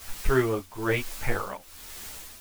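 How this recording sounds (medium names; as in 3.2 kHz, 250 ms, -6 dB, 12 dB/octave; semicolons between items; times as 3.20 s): a quantiser's noise floor 8-bit, dither triangular; tremolo triangle 1.1 Hz, depth 85%; a shimmering, thickened sound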